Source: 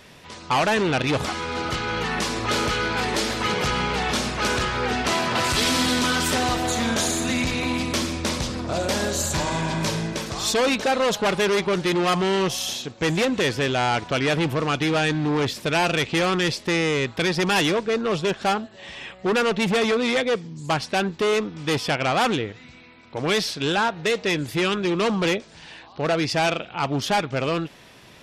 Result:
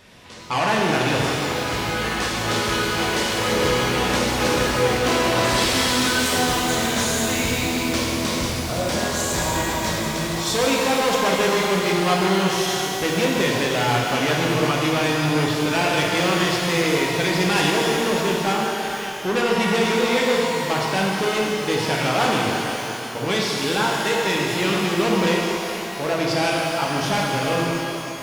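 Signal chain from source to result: 3.38–5.57 small resonant body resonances 300/520 Hz, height 9 dB, ringing for 40 ms; shimmer reverb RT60 3.1 s, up +12 st, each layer -8 dB, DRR -3 dB; gain -3 dB

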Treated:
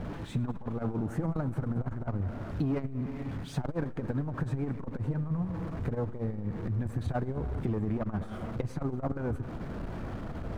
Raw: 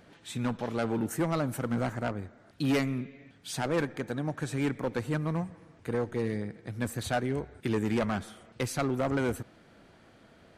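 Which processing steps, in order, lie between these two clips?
zero-crossing step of -41 dBFS; tilt -4.5 dB/oct; sample leveller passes 1; compressor 8:1, threshold -22 dBFS, peak gain reduction 10 dB; dynamic EQ 1100 Hz, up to +8 dB, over -49 dBFS, Q 1.1; multi-head echo 0.104 s, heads first and second, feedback 59%, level -21 dB; core saturation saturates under 130 Hz; gain -4.5 dB

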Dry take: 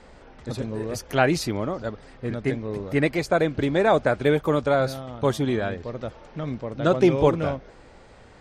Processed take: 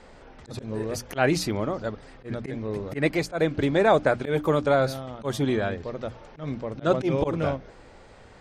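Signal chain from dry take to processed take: notches 60/120/180/240/300 Hz; auto swell 0.117 s

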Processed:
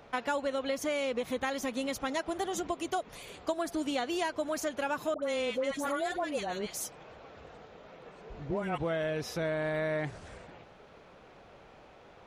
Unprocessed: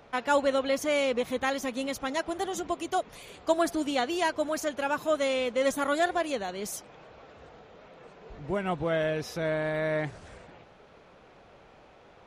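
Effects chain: compressor 10:1, threshold -28 dBFS, peak gain reduction 10 dB; 5.14–8.78 dispersion highs, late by 86 ms, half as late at 1100 Hz

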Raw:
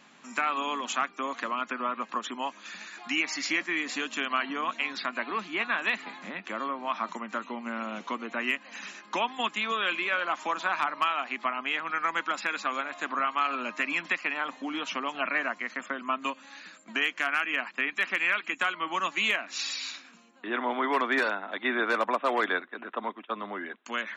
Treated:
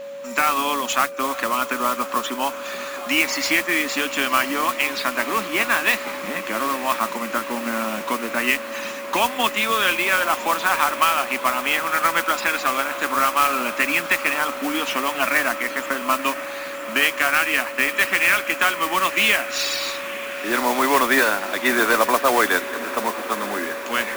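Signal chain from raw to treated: modulation noise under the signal 11 dB; diffused feedback echo 1.007 s, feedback 79%, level -15 dB; whine 560 Hz -40 dBFS; gain +8.5 dB

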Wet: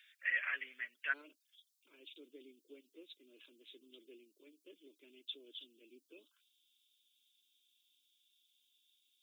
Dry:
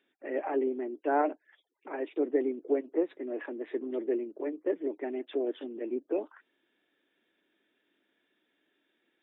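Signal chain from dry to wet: inverse Chebyshev high-pass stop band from 890 Hz, stop band 40 dB, from 1.12 s stop band from 2000 Hz; gain +14 dB

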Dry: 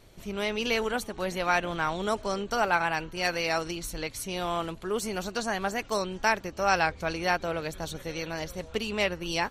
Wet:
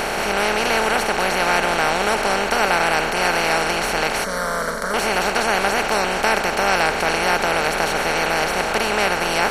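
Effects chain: per-bin compression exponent 0.2; 4.24–4.94 fixed phaser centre 530 Hz, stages 8

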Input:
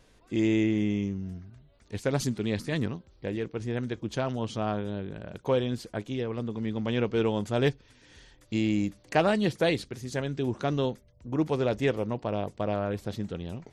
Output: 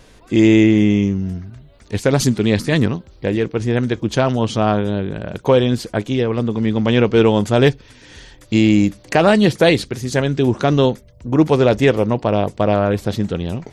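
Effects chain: maximiser +14.5 dB; gain -1 dB

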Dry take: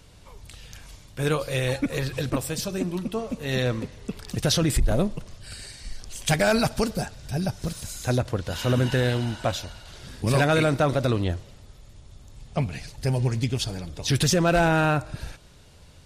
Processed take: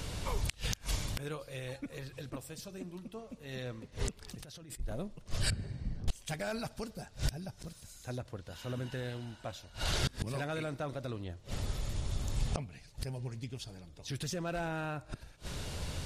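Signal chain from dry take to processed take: 5.5–6.08 band-pass 140 Hz, Q 1.2; flipped gate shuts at -30 dBFS, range -28 dB; 4.21–4.8 negative-ratio compressor -60 dBFS, ratio -1; gain +11.5 dB

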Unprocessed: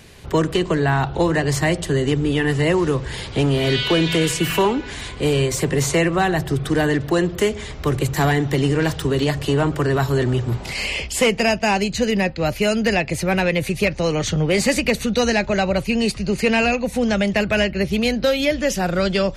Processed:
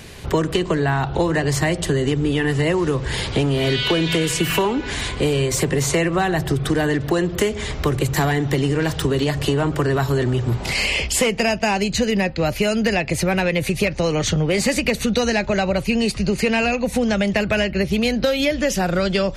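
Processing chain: compressor 4:1, threshold -23 dBFS, peak gain reduction 9 dB; gain +6 dB

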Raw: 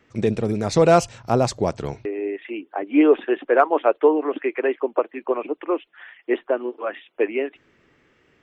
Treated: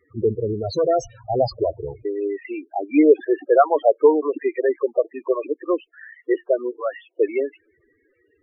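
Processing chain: 0.59–1.39 overloaded stage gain 17.5 dB; bell 180 Hz -12 dB 0.98 oct; loudest bins only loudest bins 8; gain +4 dB

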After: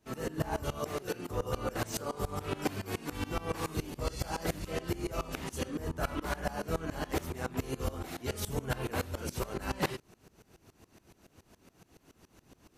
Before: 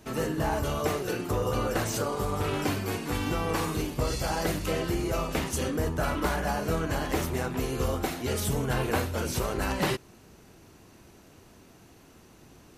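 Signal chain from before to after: dB-ramp tremolo swelling 7.1 Hz, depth 21 dB

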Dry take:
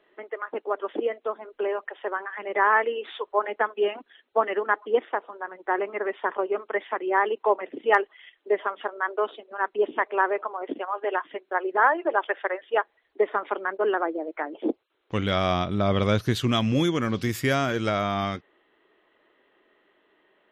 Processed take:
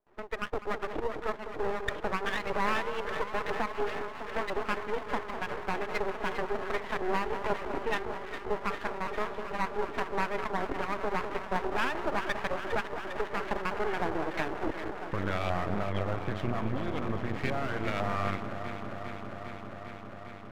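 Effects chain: gate with hold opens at -55 dBFS; low shelf 240 Hz +8 dB; compressor 6:1, threshold -26 dBFS, peak gain reduction 13 dB; hard clip -22.5 dBFS, distortion -18 dB; LFO low-pass saw up 2 Hz 830–2600 Hz; echo with dull and thin repeats by turns 0.201 s, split 1100 Hz, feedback 90%, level -8 dB; half-wave rectifier

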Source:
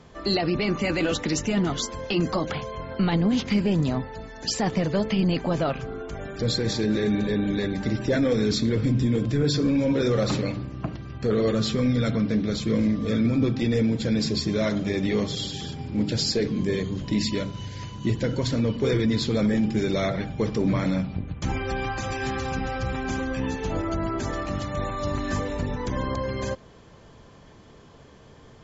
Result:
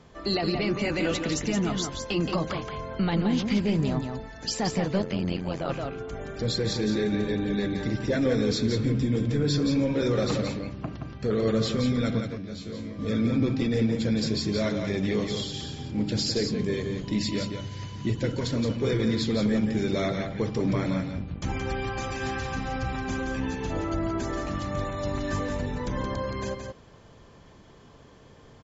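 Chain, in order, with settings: 12.2–12.99 resonator 92 Hz, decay 0.27 s, harmonics all, mix 90%; echo 0.173 s -6 dB; 5.02–5.69 AM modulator 88 Hz, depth 75%; gain -3 dB

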